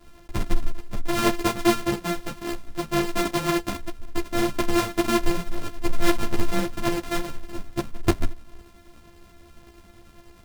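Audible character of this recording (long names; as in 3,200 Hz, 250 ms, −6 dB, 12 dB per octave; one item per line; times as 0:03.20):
a buzz of ramps at a fixed pitch in blocks of 128 samples
tremolo saw up 10 Hz, depth 40%
a shimmering, thickened sound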